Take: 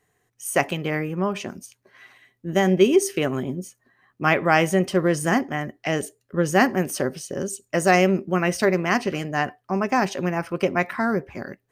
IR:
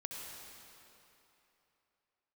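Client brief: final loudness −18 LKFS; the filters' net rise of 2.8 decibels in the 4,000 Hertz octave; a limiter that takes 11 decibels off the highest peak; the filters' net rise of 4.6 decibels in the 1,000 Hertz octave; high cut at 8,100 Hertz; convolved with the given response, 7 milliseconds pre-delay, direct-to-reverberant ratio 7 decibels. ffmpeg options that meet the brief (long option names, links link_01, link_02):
-filter_complex "[0:a]lowpass=8100,equalizer=frequency=1000:width_type=o:gain=6.5,equalizer=frequency=4000:width_type=o:gain=4,alimiter=limit=-10dB:level=0:latency=1,asplit=2[link_01][link_02];[1:a]atrim=start_sample=2205,adelay=7[link_03];[link_02][link_03]afir=irnorm=-1:irlink=0,volume=-6.5dB[link_04];[link_01][link_04]amix=inputs=2:normalize=0,volume=5dB"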